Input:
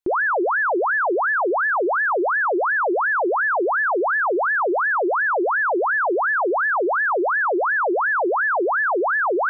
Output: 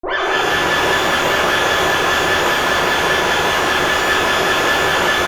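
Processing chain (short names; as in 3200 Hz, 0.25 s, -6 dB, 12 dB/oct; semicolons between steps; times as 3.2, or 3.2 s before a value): dynamic EQ 240 Hz, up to +7 dB, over -38 dBFS, Q 1.3; bouncing-ball echo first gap 0.43 s, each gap 0.6×, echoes 5; added harmonics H 4 -6 dB, 5 -16 dB, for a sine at -8 dBFS; low shelf 310 Hz -2.5 dB; de-hum 93.12 Hz, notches 3; tempo 1.8×; shimmer reverb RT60 1.1 s, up +12 st, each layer -8 dB, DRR -5.5 dB; gain -8 dB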